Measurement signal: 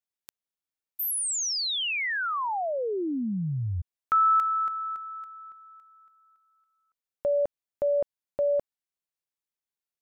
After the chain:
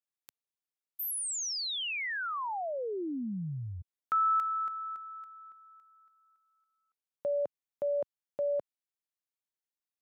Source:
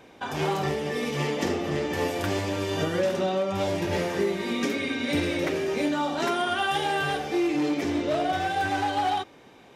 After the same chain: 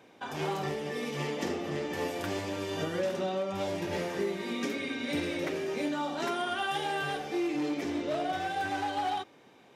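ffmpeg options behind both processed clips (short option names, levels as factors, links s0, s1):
-af "highpass=110,volume=0.501"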